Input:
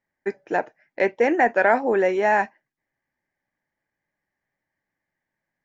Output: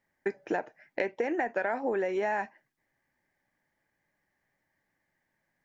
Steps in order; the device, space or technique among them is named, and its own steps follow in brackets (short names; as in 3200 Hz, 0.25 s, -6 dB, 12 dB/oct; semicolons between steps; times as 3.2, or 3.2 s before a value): serial compression, peaks first (compressor, threshold -25 dBFS, peak gain reduction 11.5 dB; compressor 2:1, threshold -35 dBFS, peak gain reduction 7 dB); gain +4 dB